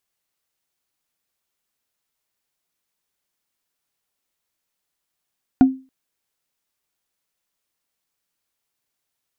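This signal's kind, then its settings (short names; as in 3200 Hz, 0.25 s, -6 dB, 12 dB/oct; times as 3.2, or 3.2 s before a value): wood hit, length 0.28 s, lowest mode 263 Hz, decay 0.31 s, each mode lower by 11 dB, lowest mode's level -4.5 dB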